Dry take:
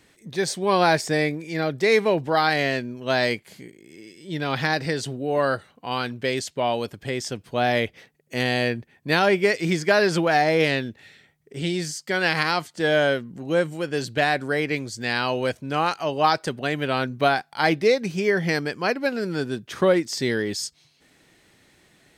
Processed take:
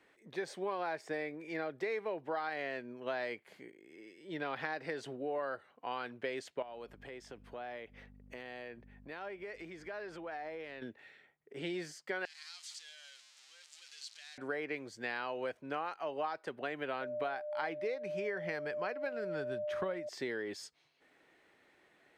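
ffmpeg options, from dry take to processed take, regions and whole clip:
ffmpeg -i in.wav -filter_complex "[0:a]asettb=1/sr,asplit=3[link_01][link_02][link_03];[link_01]atrim=end=6.624[link_04];[link_02]atrim=start=6.62:end=10.82,asetpts=PTS-STARTPTS,afade=type=in:duration=0.004:curve=qsin,afade=type=out:start_time=4.196:duration=0.004:curve=qsin,aeval=exprs='val(0)+0.0158*(sin(2*PI*50*n/s)+sin(2*PI*2*50*n/s)/2+sin(2*PI*3*50*n/s)/3+sin(2*PI*4*50*n/s)/4+sin(2*PI*5*50*n/s)/5)':channel_layout=same,acompressor=threshold=-33dB:ratio=10:attack=3.2:release=140:knee=1:detection=peak[link_05];[link_03]atrim=start=10.816[link_06];[link_04][link_05]acrossfade=duration=0.004:curve1=hsin:curve2=qsin[link_07];[link_07][link_06]acrossfade=duration=0.004:curve1=qsin:curve2=hsin,asettb=1/sr,asplit=3[link_08][link_09][link_10];[link_08]atrim=end=12.254[link_11];[link_09]atrim=start=12.25:end=14.38,asetpts=PTS-STARTPTS,afade=type=in:duration=0.004:curve=qsin,afade=type=out:start_time=2.126:duration=0.004:curve=qsin,aeval=exprs='val(0)+0.5*0.0944*sgn(val(0))':channel_layout=same,acompressor=threshold=-20dB:ratio=2:attack=3.2:release=140:knee=1:detection=peak,asuperpass=centerf=5900:order=4:qfactor=1.4[link_12];[link_10]atrim=start=14.376[link_13];[link_11][link_12]acrossfade=duration=0.004:curve1=hsin:curve2=qsin[link_14];[link_14][link_13]acrossfade=duration=0.004:curve1=qsin:curve2=hsin,asettb=1/sr,asplit=3[link_15][link_16][link_17];[link_15]atrim=end=17.014[link_18];[link_16]atrim=start=17.01:end=20.09,asetpts=PTS-STARTPTS,afade=type=in:duration=0.004:curve=qsin,afade=type=out:start_time=3.076:duration=0.004:curve=qsin,asubboost=boost=7.5:cutoff=130,aeval=exprs='val(0)+0.0447*sin(2*PI*600*n/s)':channel_layout=same[link_19];[link_17]atrim=start=20.086[link_20];[link_18][link_19]acrossfade=duration=0.004:curve1=hsin:curve2=qsin[link_21];[link_21][link_20]acrossfade=duration=0.004:curve1=qsin:curve2=hsin,acrossover=split=310 2700:gain=0.158 1 0.178[link_22][link_23][link_24];[link_22][link_23][link_24]amix=inputs=3:normalize=0,acompressor=threshold=-29dB:ratio=6,volume=-5.5dB" out.wav

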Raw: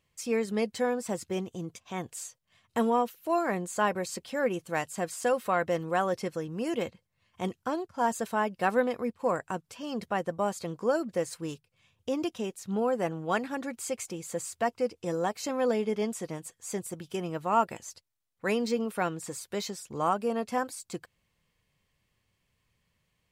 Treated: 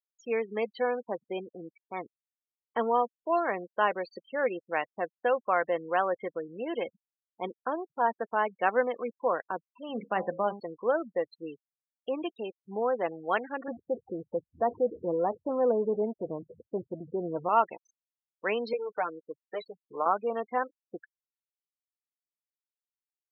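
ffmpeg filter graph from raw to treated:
ffmpeg -i in.wav -filter_complex "[0:a]asettb=1/sr,asplit=3[link_01][link_02][link_03];[link_01]atrim=end=9.894[link_04];[link_02]atrim=start=9.89:end=10.6,asetpts=PTS-STARTPTS,afade=type=in:duration=0.004:curve=qsin,afade=type=out:start_time=0.706:duration=0.004:curve=qsin,equalizer=frequency=190:width_type=o:width=1.1:gain=9,bandreject=frequency=67.06:width_type=h:width=4,bandreject=frequency=134.12:width_type=h:width=4,bandreject=frequency=201.18:width_type=h:width=4,bandreject=frequency=268.24:width_type=h:width=4,bandreject=frequency=335.3:width_type=h:width=4,bandreject=frequency=402.36:width_type=h:width=4,bandreject=frequency=469.42:width_type=h:width=4,bandreject=frequency=536.48:width_type=h:width=4,bandreject=frequency=603.54:width_type=h:width=4,bandreject=frequency=670.6:width_type=h:width=4,bandreject=frequency=737.66:width_type=h:width=4,bandreject=frequency=804.72:width_type=h:width=4,bandreject=frequency=871.78:width_type=h:width=4,bandreject=frequency=938.84:width_type=h:width=4,bandreject=frequency=1005.9:width_type=h:width=4,bandreject=frequency=1072.96:width_type=h:width=4,bandreject=frequency=1140.02:width_type=h:width=4,bandreject=frequency=1207.08:width_type=h:width=4,bandreject=frequency=1274.14:width_type=h:width=4,bandreject=frequency=1341.2:width_type=h:width=4,bandreject=frequency=1408.26:width_type=h:width=4,bandreject=frequency=1475.32:width_type=h:width=4,bandreject=frequency=1542.38:width_type=h:width=4,bandreject=frequency=1609.44:width_type=h:width=4,bandreject=frequency=1676.5:width_type=h:width=4,bandreject=frequency=1743.56:width_type=h:width=4[link_05];[link_03]atrim=start=10.596[link_06];[link_04][link_05]acrossfade=duration=0.004:curve1=hsin:curve2=qsin[link_07];[link_07][link_06]acrossfade=duration=0.004:curve1=qsin:curve2=hsin,asettb=1/sr,asplit=3[link_08][link_09][link_10];[link_08]atrim=end=13.684[link_11];[link_09]atrim=start=13.68:end=17.49,asetpts=PTS-STARTPTS,afade=type=in:duration=0.004:curve=qsin,afade=type=out:start_time=3.806:duration=0.004:curve=qsin,aeval=exprs='val(0)+0.5*0.0158*sgn(val(0))':channel_layout=same,lowpass=1000,aemphasis=mode=reproduction:type=bsi[link_12];[link_10]atrim=start=17.486[link_13];[link_11][link_12]acrossfade=duration=0.004:curve1=hsin:curve2=qsin[link_14];[link_14][link_13]acrossfade=duration=0.004:curve1=qsin:curve2=hsin,asettb=1/sr,asplit=3[link_15][link_16][link_17];[link_15]atrim=end=18.734[link_18];[link_16]atrim=start=18.73:end=20.06,asetpts=PTS-STARTPTS,afade=type=in:duration=0.004:curve=qsin,afade=type=out:start_time=1.326:duration=0.004:curve=qsin,aecho=1:1:6.6:0.76,atrim=end_sample=58653,acrossover=split=370|1600[link_19][link_20][link_21];[link_19]acompressor=threshold=-47dB:ratio=4[link_22];[link_20]acompressor=threshold=-28dB:ratio=4[link_23];[link_21]acompressor=threshold=-46dB:ratio=4[link_24];[link_22][link_23][link_24]amix=inputs=3:normalize=0,acrusher=bits=7:mode=log:mix=0:aa=0.000001[link_25];[link_17]atrim=start=20.056[link_26];[link_18][link_25]acrossfade=duration=0.004:curve1=hsin:curve2=qsin[link_27];[link_27][link_26]acrossfade=duration=0.004:curve1=qsin:curve2=hsin,lowpass=3900,afftfilt=real='re*gte(hypot(re,im),0.0178)':imag='im*gte(hypot(re,im),0.0178)':win_size=1024:overlap=0.75,highpass=400,volume=1.5dB" out.wav

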